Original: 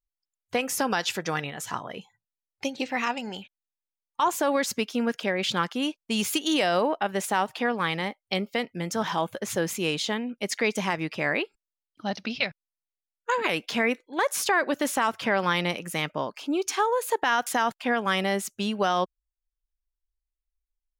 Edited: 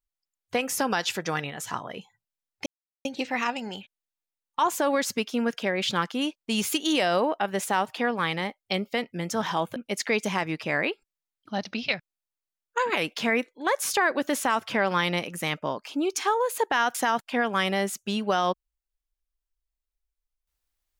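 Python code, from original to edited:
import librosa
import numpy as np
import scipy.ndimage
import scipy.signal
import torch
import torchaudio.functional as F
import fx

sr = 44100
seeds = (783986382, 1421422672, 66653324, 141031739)

y = fx.edit(x, sr, fx.insert_silence(at_s=2.66, length_s=0.39),
    fx.cut(start_s=9.37, length_s=0.91), tone=tone)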